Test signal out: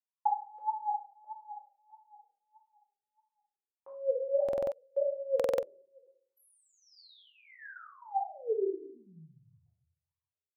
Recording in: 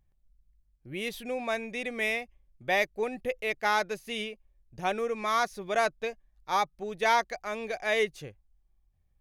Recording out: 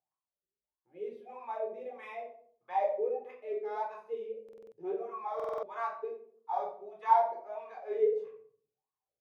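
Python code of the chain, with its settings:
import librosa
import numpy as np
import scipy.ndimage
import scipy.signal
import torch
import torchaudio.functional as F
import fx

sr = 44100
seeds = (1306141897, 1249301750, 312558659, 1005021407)

y = scipy.signal.sosfilt(scipy.signal.butter(2, 74.0, 'highpass', fs=sr, output='sos'), x)
y = fx.high_shelf(y, sr, hz=2900.0, db=7.0)
y = fx.wah_lfo(y, sr, hz=1.6, low_hz=370.0, high_hz=1100.0, q=18.0)
y = fx.room_shoebox(y, sr, seeds[0], volume_m3=610.0, walls='furnished', distance_m=4.0)
y = fx.buffer_glitch(y, sr, at_s=(4.44, 5.35), block=2048, repeats=5)
y = F.gain(torch.from_numpy(y), 3.0).numpy()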